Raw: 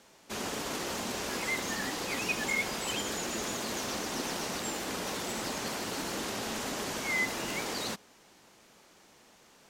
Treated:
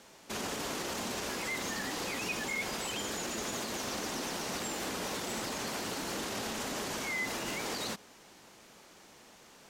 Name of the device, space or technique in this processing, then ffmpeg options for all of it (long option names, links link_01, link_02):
clipper into limiter: -af "asoftclip=type=hard:threshold=-22.5dB,alimiter=level_in=6.5dB:limit=-24dB:level=0:latency=1:release=57,volume=-6.5dB,volume=3dB"